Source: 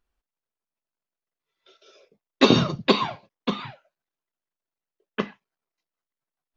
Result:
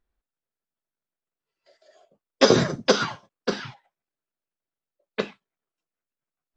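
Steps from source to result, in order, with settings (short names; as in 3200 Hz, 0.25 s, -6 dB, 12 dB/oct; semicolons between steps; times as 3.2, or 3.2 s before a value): formant shift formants +5 st; mismatched tape noise reduction decoder only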